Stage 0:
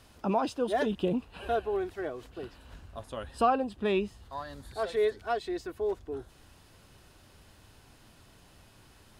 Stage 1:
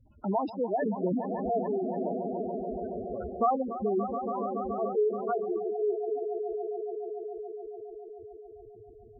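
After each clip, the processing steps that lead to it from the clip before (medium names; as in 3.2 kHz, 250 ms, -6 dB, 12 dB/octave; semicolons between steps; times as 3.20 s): echo with a slow build-up 142 ms, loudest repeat 5, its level -10 dB; spectral gate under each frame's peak -10 dB strong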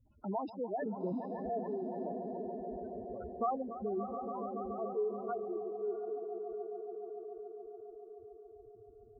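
echo that smears into a reverb 710 ms, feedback 42%, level -14.5 dB; trim -8 dB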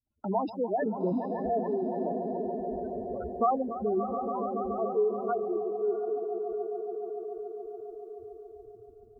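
hum notches 50/100/150/200 Hz; expander -53 dBFS; trim +8 dB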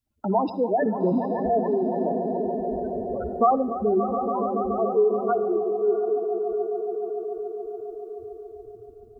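reverberation RT60 0.80 s, pre-delay 51 ms, DRR 17 dB; trim +6.5 dB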